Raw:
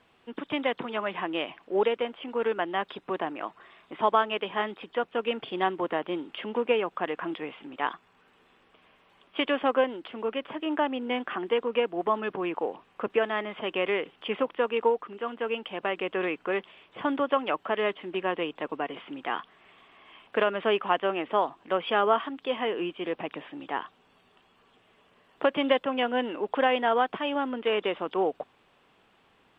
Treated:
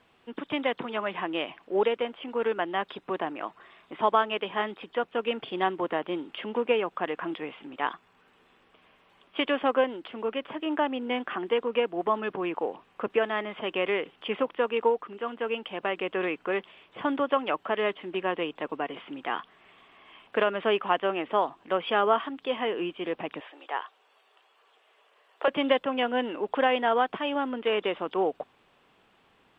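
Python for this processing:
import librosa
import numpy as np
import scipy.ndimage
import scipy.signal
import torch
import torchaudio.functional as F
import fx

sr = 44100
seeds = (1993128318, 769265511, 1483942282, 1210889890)

y = fx.highpass(x, sr, hz=450.0, slope=24, at=(23.4, 25.48))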